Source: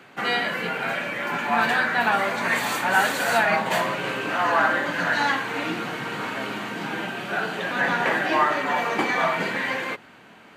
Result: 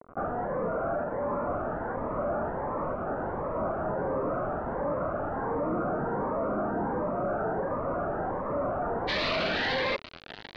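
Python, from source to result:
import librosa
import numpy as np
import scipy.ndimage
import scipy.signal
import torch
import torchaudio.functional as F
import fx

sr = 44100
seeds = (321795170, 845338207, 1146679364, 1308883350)

y = (np.mod(10.0 ** (19.0 / 20.0) * x + 1.0, 2.0) - 1.0) / 10.0 ** (19.0 / 20.0)
y = fx.peak_eq(y, sr, hz=600.0, db=10.5, octaves=0.63)
y = fx.quant_companded(y, sr, bits=2)
y = fx.ellip_lowpass(y, sr, hz=fx.steps((0.0, 1300.0), (9.07, 4300.0)), order=4, stop_db=80)
y = fx.notch_cascade(y, sr, direction='rising', hz=1.4)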